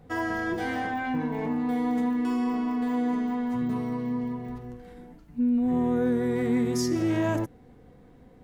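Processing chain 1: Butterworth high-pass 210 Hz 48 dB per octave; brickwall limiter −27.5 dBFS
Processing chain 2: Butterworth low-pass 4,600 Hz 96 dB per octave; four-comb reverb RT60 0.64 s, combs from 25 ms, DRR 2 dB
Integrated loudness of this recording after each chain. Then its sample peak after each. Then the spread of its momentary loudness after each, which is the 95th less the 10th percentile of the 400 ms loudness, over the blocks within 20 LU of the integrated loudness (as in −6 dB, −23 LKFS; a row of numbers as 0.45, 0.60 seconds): −34.5, −23.0 LKFS; −27.5, −10.5 dBFS; 6, 10 LU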